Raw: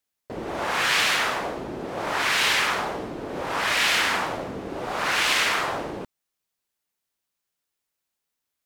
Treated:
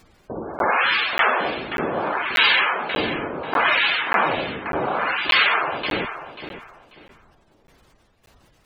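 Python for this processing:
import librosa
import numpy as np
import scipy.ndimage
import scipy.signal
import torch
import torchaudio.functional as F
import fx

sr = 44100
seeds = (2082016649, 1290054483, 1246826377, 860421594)

p1 = fx.low_shelf(x, sr, hz=63.0, db=-4.5)
p2 = fx.notch(p1, sr, hz=1900.0, q=20.0)
p3 = fx.doubler(p2, sr, ms=13.0, db=-14)
p4 = fx.spec_topn(p3, sr, count=64)
p5 = fx.high_shelf(p4, sr, hz=6400.0, db=3.5)
p6 = fx.dmg_noise_colour(p5, sr, seeds[0], colour='pink', level_db=-61.0)
p7 = fx.spec_gate(p6, sr, threshold_db=-20, keep='strong')
p8 = fx.tremolo_shape(p7, sr, shape='saw_down', hz=1.7, depth_pct=80)
p9 = p8 + fx.echo_feedback(p8, sr, ms=539, feedback_pct=25, wet_db=-11, dry=0)
p10 = fx.buffer_crackle(p9, sr, first_s=0.59, period_s=0.59, block=512, kind='zero')
y = p10 * librosa.db_to_amplitude(9.0)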